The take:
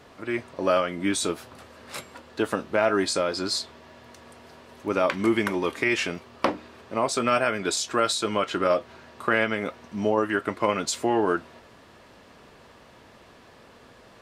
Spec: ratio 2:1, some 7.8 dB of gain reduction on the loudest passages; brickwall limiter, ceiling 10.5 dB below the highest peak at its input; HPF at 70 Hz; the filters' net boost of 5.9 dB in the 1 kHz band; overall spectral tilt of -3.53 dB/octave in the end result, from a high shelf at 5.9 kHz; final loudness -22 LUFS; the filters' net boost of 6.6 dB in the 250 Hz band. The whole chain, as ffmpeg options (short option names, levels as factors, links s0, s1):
-af "highpass=70,equalizer=f=250:t=o:g=8.5,equalizer=f=1000:t=o:g=7,highshelf=f=5900:g=5,acompressor=threshold=0.0501:ratio=2,volume=2.37,alimiter=limit=0.316:level=0:latency=1"